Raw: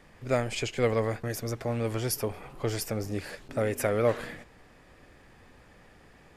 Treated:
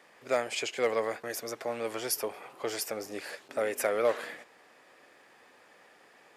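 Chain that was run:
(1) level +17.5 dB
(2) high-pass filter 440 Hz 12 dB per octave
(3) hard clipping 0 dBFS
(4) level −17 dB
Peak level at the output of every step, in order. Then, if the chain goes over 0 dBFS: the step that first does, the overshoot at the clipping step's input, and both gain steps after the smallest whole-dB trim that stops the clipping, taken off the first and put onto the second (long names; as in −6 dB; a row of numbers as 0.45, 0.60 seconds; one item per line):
+4.5, +3.5, 0.0, −17.0 dBFS
step 1, 3.5 dB
step 1 +13.5 dB, step 4 −13 dB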